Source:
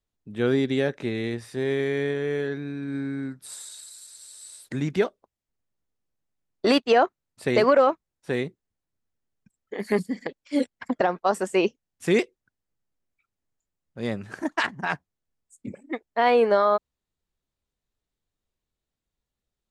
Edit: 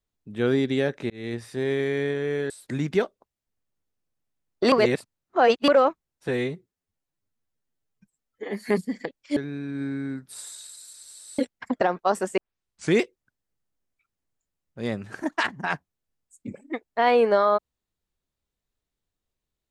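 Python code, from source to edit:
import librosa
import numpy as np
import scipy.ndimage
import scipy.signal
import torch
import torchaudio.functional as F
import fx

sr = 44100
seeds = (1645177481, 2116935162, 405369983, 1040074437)

y = fx.edit(x, sr, fx.fade_in_span(start_s=1.1, length_s=0.25),
    fx.move(start_s=2.5, length_s=2.02, to_s=10.58),
    fx.reverse_span(start_s=6.74, length_s=0.96),
    fx.stretch_span(start_s=8.3, length_s=1.61, factor=1.5),
    fx.tape_start(start_s=11.57, length_s=0.56), tone=tone)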